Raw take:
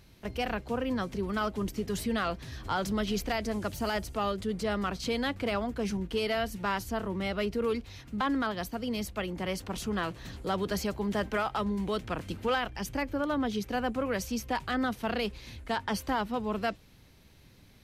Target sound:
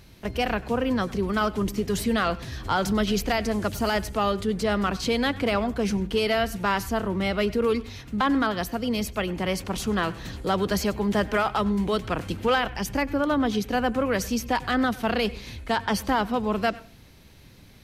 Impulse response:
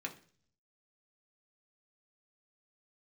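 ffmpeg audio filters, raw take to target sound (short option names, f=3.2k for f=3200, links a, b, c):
-filter_complex "[0:a]asplit=2[a][b];[1:a]atrim=start_sample=2205,adelay=95[c];[b][c]afir=irnorm=-1:irlink=0,volume=-18dB[d];[a][d]amix=inputs=2:normalize=0,volume=6.5dB"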